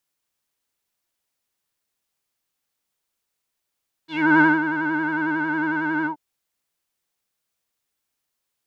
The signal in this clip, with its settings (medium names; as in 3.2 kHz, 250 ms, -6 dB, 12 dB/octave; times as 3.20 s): synth patch with vibrato D#4, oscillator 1 square, oscillator 2 level -10 dB, filter lowpass, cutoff 730 Hz, Q 5.3, filter envelope 2.5 oct, filter decay 0.17 s, filter sustain 40%, attack 327 ms, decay 0.19 s, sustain -10.5 dB, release 0.10 s, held 1.98 s, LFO 11 Hz, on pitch 71 cents